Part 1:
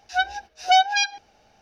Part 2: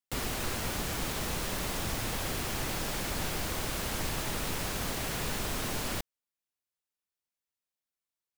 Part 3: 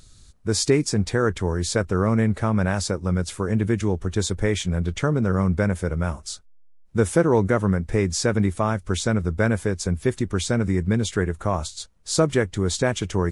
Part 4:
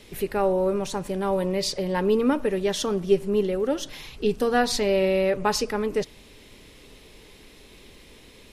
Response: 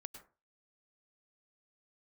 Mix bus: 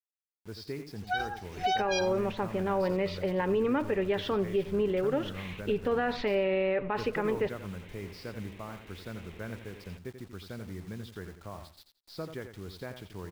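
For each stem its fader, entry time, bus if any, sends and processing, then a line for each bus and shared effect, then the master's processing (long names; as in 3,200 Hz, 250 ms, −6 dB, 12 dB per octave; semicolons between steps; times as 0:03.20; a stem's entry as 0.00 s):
−6.0 dB, 0.95 s, no send, no echo send, harmonic-percussive split with one part muted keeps harmonic; level that may fall only so fast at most 140 dB per second
muted
−19.0 dB, 0.00 s, no send, echo send −9 dB, elliptic low-pass filter 5,000 Hz; bit reduction 6 bits
−1.0 dB, 1.45 s, no send, echo send −23 dB, low-pass filter 2,700 Hz 24 dB per octave; spectral tilt +1.5 dB per octave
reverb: not used
echo: repeating echo 87 ms, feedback 20%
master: brickwall limiter −20 dBFS, peak gain reduction 9.5 dB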